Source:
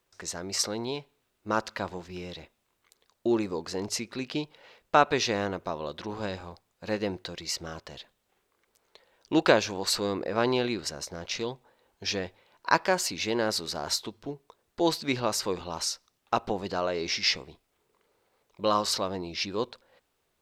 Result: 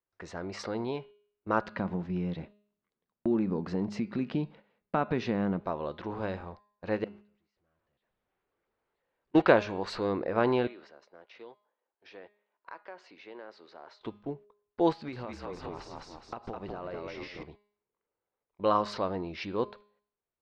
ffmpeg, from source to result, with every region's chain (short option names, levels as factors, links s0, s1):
-filter_complex "[0:a]asettb=1/sr,asplit=3[s0][s1][s2];[s0]atrim=end=1.664[s3];[s1]atrim=start=1.66:end=5.61,asetpts=PTS-STARTPTS,afade=t=in:d=0.004:c=qsin,afade=t=out:st=3.946:d=0.004:c=qsin,equalizer=f=190:w=1.2:g=14.5,acompressor=threshold=0.0355:ratio=2:attack=3.2:release=140:knee=1:detection=peak[s4];[s2]atrim=start=5.606[s5];[s3][s4]acrossfade=d=0.004:c1=hsin:c2=qsin[s6];[s6][s5]acrossfade=d=0.004:c1=qsin:c2=hsin,asettb=1/sr,asplit=3[s7][s8][s9];[s7]atrim=end=7.044[s10];[s8]atrim=start=7.04:end=9.42,asetpts=PTS-STARTPTS,afade=t=in:d=0.004:c=qsin,afade=t=out:st=2.376:d=0.004:c=qsin,aeval=exprs='val(0)+0.5*0.0398*sgn(val(0))':c=same,agate=range=0.0398:threshold=0.0708:ratio=16:release=100:detection=peak[s11];[s9]atrim=start=9.416[s12];[s10][s11]acrossfade=d=0.004:c1=hsin:c2=qsin[s13];[s13][s12]acrossfade=d=0.004:c1=qsin:c2=hsin,asettb=1/sr,asplit=3[s14][s15][s16];[s14]atrim=end=10.674[s17];[s15]atrim=start=10.67:end=14.01,asetpts=PTS-STARTPTS,afade=t=in:d=0.004:c=qsin,afade=t=out:st=3.336:d=0.004:c=qsin,acrossover=split=290 6000:gain=0.0794 1 0.0891[s18][s19][s20];[s18][s19][s20]amix=inputs=3:normalize=0,acompressor=threshold=0.00447:ratio=3:attack=3.2:release=140:knee=1:detection=peak[s21];[s16]atrim=start=14.006[s22];[s17][s21]acrossfade=d=0.004:c1=hsin:c2=qsin[s23];[s23][s22]acrossfade=d=0.004:c1=qsin:c2=hsin,asettb=1/sr,asplit=3[s24][s25][s26];[s24]atrim=end=14.924[s27];[s25]atrim=start=14.92:end=17.43,asetpts=PTS-STARTPTS,afade=t=in:d=0.004:c=qsin,afade=t=out:st=2.506:d=0.004:c=qsin,asplit=6[s28][s29][s30][s31][s32][s33];[s29]adelay=204,afreqshift=-47,volume=0.668[s34];[s30]adelay=408,afreqshift=-94,volume=0.24[s35];[s31]adelay=612,afreqshift=-141,volume=0.0871[s36];[s32]adelay=816,afreqshift=-188,volume=0.0313[s37];[s33]adelay=1020,afreqshift=-235,volume=0.0112[s38];[s28][s34][s35][s36][s37][s38]amix=inputs=6:normalize=0,atrim=end_sample=110691,acompressor=threshold=0.0224:ratio=16:attack=3.2:release=140:knee=1:detection=peak[s39];[s26]atrim=start=17.426[s40];[s27][s39]acrossfade=d=0.004:c1=hsin:c2=qsin[s41];[s41][s40]acrossfade=d=0.004:c1=qsin:c2=hsin,agate=range=0.126:threshold=0.00398:ratio=16:detection=peak,lowpass=2100,bandreject=f=206.5:t=h:w=4,bandreject=f=413:t=h:w=4,bandreject=f=619.5:t=h:w=4,bandreject=f=826:t=h:w=4,bandreject=f=1032.5:t=h:w=4,bandreject=f=1239:t=h:w=4,bandreject=f=1445.5:t=h:w=4,bandreject=f=1652:t=h:w=4,bandreject=f=1858.5:t=h:w=4,bandreject=f=2065:t=h:w=4,bandreject=f=2271.5:t=h:w=4,bandreject=f=2478:t=h:w=4,bandreject=f=2684.5:t=h:w=4,bandreject=f=2891:t=h:w=4,bandreject=f=3097.5:t=h:w=4,bandreject=f=3304:t=h:w=4,bandreject=f=3510.5:t=h:w=4,bandreject=f=3717:t=h:w=4,bandreject=f=3923.5:t=h:w=4,bandreject=f=4130:t=h:w=4,bandreject=f=4336.5:t=h:w=4,bandreject=f=4543:t=h:w=4,bandreject=f=4749.5:t=h:w=4"